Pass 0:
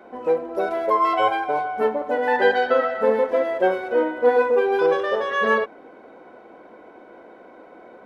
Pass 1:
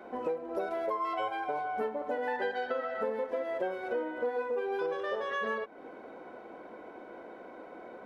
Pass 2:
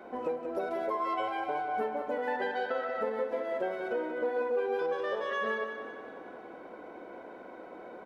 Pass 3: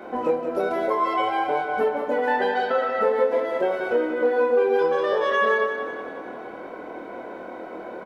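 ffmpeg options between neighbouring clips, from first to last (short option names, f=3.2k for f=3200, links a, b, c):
-af "acompressor=threshold=-29dB:ratio=6,volume=-2dB"
-af "aecho=1:1:184|368|552|736|920|1104:0.398|0.203|0.104|0.0528|0.0269|0.0137"
-filter_complex "[0:a]asplit=2[a][b];[b]adelay=25,volume=-3.5dB[c];[a][c]amix=inputs=2:normalize=0,volume=8.5dB"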